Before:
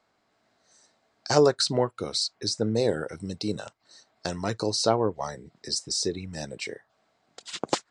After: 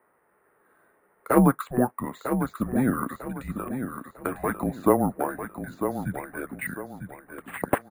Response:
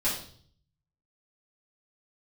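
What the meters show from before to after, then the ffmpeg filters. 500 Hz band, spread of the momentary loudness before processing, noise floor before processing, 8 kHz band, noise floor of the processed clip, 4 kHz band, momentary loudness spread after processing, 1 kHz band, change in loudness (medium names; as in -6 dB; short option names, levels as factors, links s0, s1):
-2.0 dB, 15 LU, -72 dBFS, -10.0 dB, -67 dBFS, under -25 dB, 14 LU, +3.5 dB, 0.0 dB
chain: -filter_complex "[0:a]tiltshelf=f=970:g=-4.5,highpass=f=420:t=q:w=0.5412,highpass=f=420:t=q:w=1.307,lowpass=f=2200:t=q:w=0.5176,lowpass=f=2200:t=q:w=0.7071,lowpass=f=2200:t=q:w=1.932,afreqshift=-250,asplit=2[s0][s1];[s1]aecho=0:1:949|1898|2847|3796:0.398|0.131|0.0434|0.0143[s2];[s0][s2]amix=inputs=2:normalize=0,acrusher=samples=4:mix=1:aa=0.000001,volume=2"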